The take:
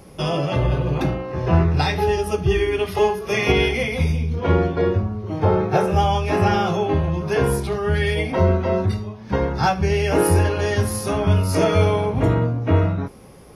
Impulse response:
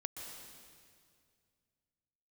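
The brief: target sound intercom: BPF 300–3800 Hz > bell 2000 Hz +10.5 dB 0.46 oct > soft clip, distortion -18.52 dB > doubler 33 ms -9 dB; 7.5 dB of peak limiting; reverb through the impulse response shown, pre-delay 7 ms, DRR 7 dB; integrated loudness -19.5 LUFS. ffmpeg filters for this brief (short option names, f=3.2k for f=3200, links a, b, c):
-filter_complex "[0:a]alimiter=limit=-13.5dB:level=0:latency=1,asplit=2[a][b];[1:a]atrim=start_sample=2205,adelay=7[c];[b][c]afir=irnorm=-1:irlink=0,volume=-5.5dB[d];[a][d]amix=inputs=2:normalize=0,highpass=300,lowpass=3.8k,equalizer=f=2k:t=o:w=0.46:g=10.5,asoftclip=threshold=-15dB,asplit=2[e][f];[f]adelay=33,volume=-9dB[g];[e][g]amix=inputs=2:normalize=0,volume=5dB"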